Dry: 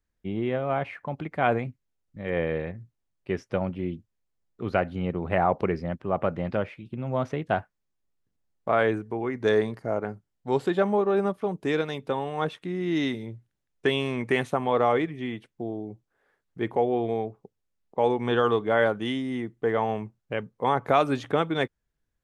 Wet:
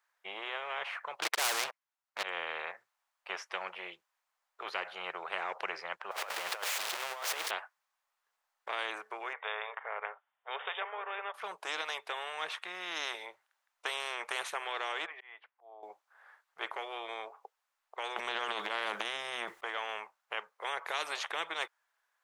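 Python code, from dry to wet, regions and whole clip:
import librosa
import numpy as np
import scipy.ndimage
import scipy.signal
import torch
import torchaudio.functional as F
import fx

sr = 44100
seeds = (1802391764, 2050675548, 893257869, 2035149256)

y = fx.chain(x, sr, fx.highpass(hz=380.0, slope=6),
    fx.leveller(passes=5), at=(1.22, 2.23))
y = fx.chain(y, sr, fx.zero_step(step_db=-32.5),
    fx.highpass(hz=250.0, slope=6),
    fx.over_compress(threshold_db=-31.0, ratio=-0.5), at=(6.11, 7.51))
y = fx.chain(y, sr, fx.brickwall_bandpass(low_hz=400.0, high_hz=3700.0),
    fx.env_lowpass_down(base_hz=2300.0, full_db=-22.5), at=(9.33, 11.34))
y = fx.chain(y, sr, fx.highpass(hz=390.0, slope=12),
    fx.air_absorb(metres=360.0),
    fx.auto_swell(attack_ms=559.0), at=(15.06, 15.83))
y = fx.chain(y, sr, fx.low_shelf(hz=440.0, db=11.5),
    fx.transient(attack_db=-11, sustain_db=12),
    fx.band_squash(depth_pct=70), at=(18.16, 19.61))
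y = scipy.signal.sosfilt(scipy.signal.cheby2(4, 60, 280.0, 'highpass', fs=sr, output='sos'), y)
y = fx.tilt_shelf(y, sr, db=10.0, hz=1300.0)
y = fx.spectral_comp(y, sr, ratio=4.0)
y = y * 10.0 ** (-5.0 / 20.0)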